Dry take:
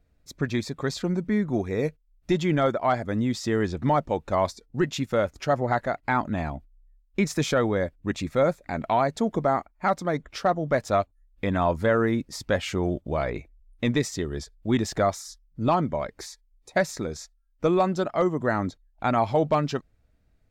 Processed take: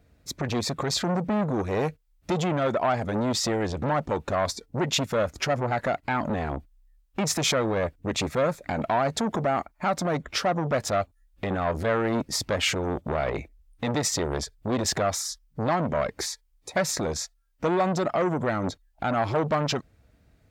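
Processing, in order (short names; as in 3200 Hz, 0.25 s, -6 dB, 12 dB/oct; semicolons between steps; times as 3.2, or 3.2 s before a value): limiter -22.5 dBFS, peak gain reduction 9.5 dB; HPF 60 Hz 12 dB/oct; core saturation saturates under 850 Hz; gain +9 dB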